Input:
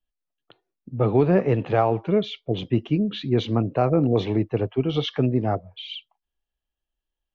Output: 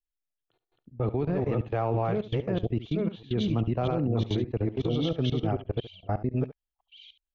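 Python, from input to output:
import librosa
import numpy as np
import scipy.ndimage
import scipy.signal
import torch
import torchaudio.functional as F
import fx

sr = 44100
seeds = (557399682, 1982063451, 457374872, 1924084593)

p1 = fx.reverse_delay(x, sr, ms=646, wet_db=-1)
p2 = fx.high_shelf(p1, sr, hz=4900.0, db=4.0)
p3 = fx.level_steps(p2, sr, step_db=23)
p4 = fx.low_shelf(p3, sr, hz=100.0, db=9.5)
p5 = p4 + fx.echo_single(p4, sr, ms=71, db=-15.0, dry=0)
y = p5 * librosa.db_to_amplitude(-5.0)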